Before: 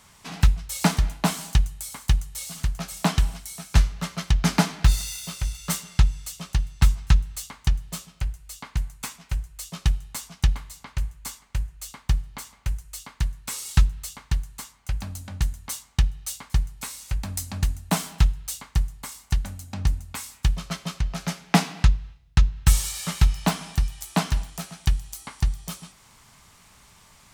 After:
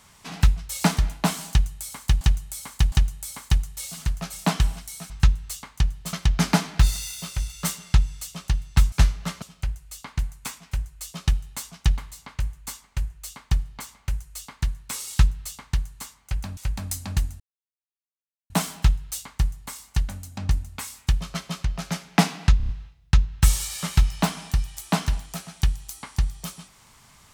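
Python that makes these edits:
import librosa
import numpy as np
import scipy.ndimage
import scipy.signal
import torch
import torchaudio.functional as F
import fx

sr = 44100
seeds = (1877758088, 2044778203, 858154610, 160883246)

y = fx.edit(x, sr, fx.repeat(start_s=1.5, length_s=0.71, count=3),
    fx.swap(start_s=3.68, length_s=0.5, other_s=6.97, other_length_s=1.03),
    fx.cut(start_s=15.15, length_s=1.88),
    fx.insert_silence(at_s=17.86, length_s=1.1),
    fx.stutter(start_s=21.93, slice_s=0.03, count=5), tone=tone)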